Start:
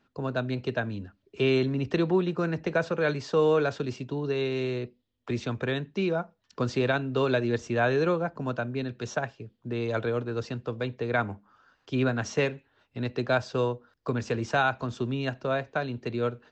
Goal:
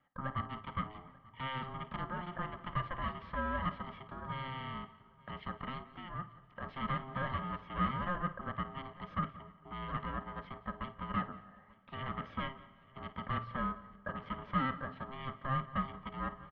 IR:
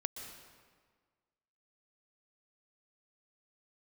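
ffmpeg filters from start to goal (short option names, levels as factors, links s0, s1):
-filter_complex "[0:a]asubboost=boost=3.5:cutoff=140,asoftclip=type=tanh:threshold=0.0376,asplit=3[s0][s1][s2];[s0]afade=t=out:st=5.83:d=0.02[s3];[s1]acompressor=threshold=0.00794:ratio=2,afade=t=in:st=5.83:d=0.02,afade=t=out:st=6.62:d=0.02[s4];[s2]afade=t=in:st=6.62:d=0.02[s5];[s3][s4][s5]amix=inputs=3:normalize=0,asplit=3[s6][s7][s8];[s6]bandpass=f=730:t=q:w=8,volume=1[s9];[s7]bandpass=f=1090:t=q:w=8,volume=0.501[s10];[s8]bandpass=f=2440:t=q:w=8,volume=0.355[s11];[s9][s10][s11]amix=inputs=3:normalize=0,bandreject=f=215.8:t=h:w=4,bandreject=f=431.6:t=h:w=4,bandreject=f=647.4:t=h:w=4,asplit=2[s12][s13];[s13]aecho=0:1:177:0.106[s14];[s12][s14]amix=inputs=2:normalize=0,aeval=exprs='val(0)*sin(2*PI*530*n/s)':c=same,lowpass=f=3100:w=0.5412,lowpass=f=3100:w=1.3066,aecho=1:1:888:0.0708,asplit=2[s15][s16];[1:a]atrim=start_sample=2205,adelay=53[s17];[s16][s17]afir=irnorm=-1:irlink=0,volume=0.188[s18];[s15][s18]amix=inputs=2:normalize=0,volume=3.55"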